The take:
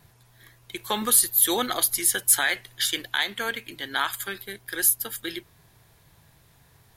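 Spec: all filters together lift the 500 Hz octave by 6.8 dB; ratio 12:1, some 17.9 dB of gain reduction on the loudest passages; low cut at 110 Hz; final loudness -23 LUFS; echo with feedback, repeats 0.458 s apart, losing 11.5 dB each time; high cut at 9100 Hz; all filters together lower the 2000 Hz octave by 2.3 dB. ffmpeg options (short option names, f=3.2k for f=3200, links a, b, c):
-af "highpass=110,lowpass=9.1k,equalizer=f=500:t=o:g=8.5,equalizer=f=2k:t=o:g=-3.5,acompressor=threshold=-36dB:ratio=12,aecho=1:1:458|916|1374:0.266|0.0718|0.0194,volume=16.5dB"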